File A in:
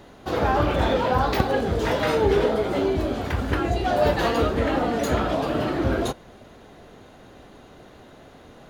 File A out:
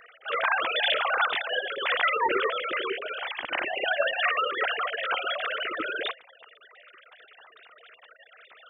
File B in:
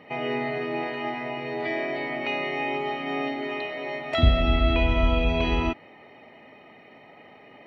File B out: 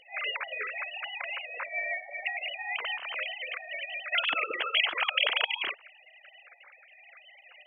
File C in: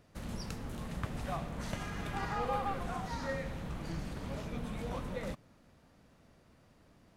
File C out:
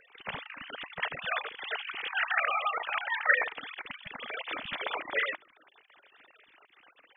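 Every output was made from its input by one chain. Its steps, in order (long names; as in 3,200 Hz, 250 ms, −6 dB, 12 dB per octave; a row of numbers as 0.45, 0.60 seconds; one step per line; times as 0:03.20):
three sine waves on the formant tracks
gate on every frequency bin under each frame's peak −10 dB weak
high-shelf EQ 2,900 Hz +10 dB
normalise the peak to −12 dBFS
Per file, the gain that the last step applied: +6.0, −1.5, +14.0 decibels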